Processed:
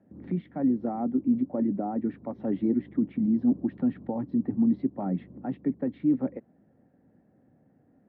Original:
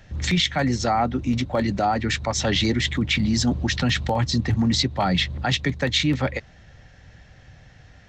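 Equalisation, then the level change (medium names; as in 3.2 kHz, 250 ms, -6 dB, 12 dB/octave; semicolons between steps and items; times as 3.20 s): ladder band-pass 310 Hz, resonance 50%; distance through air 320 m; peaking EQ 200 Hz +3.5 dB 0.32 oct; +6.0 dB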